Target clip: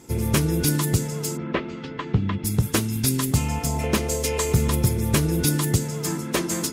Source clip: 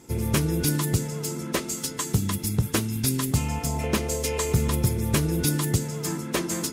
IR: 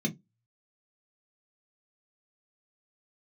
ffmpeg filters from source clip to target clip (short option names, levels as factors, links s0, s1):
-filter_complex "[0:a]asplit=3[s0][s1][s2];[s0]afade=t=out:st=1.36:d=0.02[s3];[s1]lowpass=f=3000:w=0.5412,lowpass=f=3000:w=1.3066,afade=t=in:st=1.36:d=0.02,afade=t=out:st=2.44:d=0.02[s4];[s2]afade=t=in:st=2.44:d=0.02[s5];[s3][s4][s5]amix=inputs=3:normalize=0,volume=1.33"